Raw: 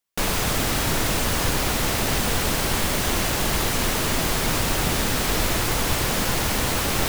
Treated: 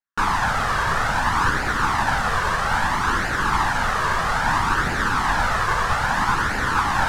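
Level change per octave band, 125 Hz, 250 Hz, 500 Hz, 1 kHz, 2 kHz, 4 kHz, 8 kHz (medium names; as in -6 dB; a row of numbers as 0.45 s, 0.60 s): -2.0 dB, -3.5 dB, -3.5 dB, +8.5 dB, +6.0 dB, -5.5 dB, -9.5 dB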